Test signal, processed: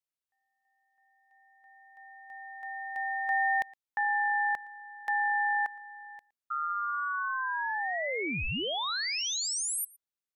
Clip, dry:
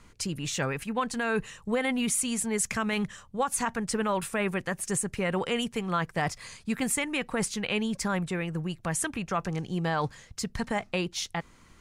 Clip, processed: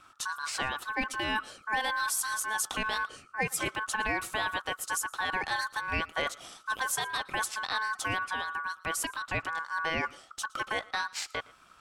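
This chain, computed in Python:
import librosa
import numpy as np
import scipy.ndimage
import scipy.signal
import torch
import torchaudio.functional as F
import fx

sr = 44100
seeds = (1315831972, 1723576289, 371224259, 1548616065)

y = x * np.sin(2.0 * np.pi * 1300.0 * np.arange(len(x)) / sr)
y = y + 10.0 ** (-23.5 / 20.0) * np.pad(y, (int(115 * sr / 1000.0), 0))[:len(y)]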